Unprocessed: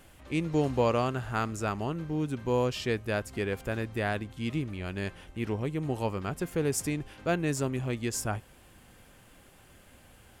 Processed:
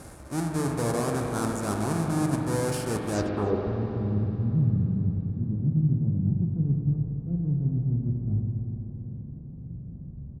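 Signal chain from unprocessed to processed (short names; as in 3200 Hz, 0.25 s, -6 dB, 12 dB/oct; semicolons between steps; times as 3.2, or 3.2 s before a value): half-waves squared off; HPF 44 Hz; bell 3000 Hz -12.5 dB 0.85 oct; notch 2000 Hz, Q 15; reverse; compressor 12:1, threshold -34 dBFS, peak gain reduction 17 dB; reverse; low-pass sweep 9800 Hz -> 160 Hz, 3.12–3.66; on a send: echo 0.294 s -23 dB; on the sum: spring tank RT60 3.7 s, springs 42/58 ms, chirp 50 ms, DRR 0.5 dB; gain +7.5 dB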